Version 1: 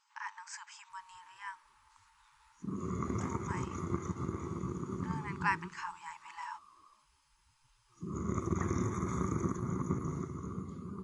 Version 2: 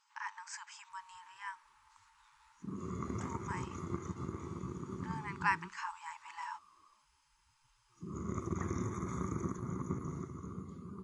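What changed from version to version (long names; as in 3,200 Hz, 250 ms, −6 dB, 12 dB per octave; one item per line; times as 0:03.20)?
reverb: off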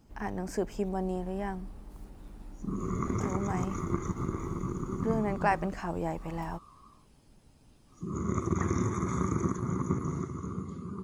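speech: remove linear-phase brick-wall band-pass 840–8,300 Hz
background +8.0 dB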